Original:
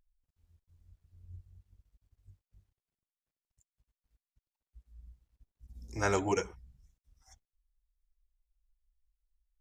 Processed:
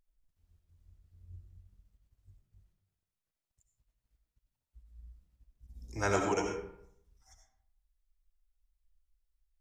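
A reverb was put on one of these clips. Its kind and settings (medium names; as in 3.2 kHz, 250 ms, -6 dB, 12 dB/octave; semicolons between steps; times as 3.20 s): algorithmic reverb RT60 0.7 s, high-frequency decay 0.6×, pre-delay 45 ms, DRR 2.5 dB; trim -1.5 dB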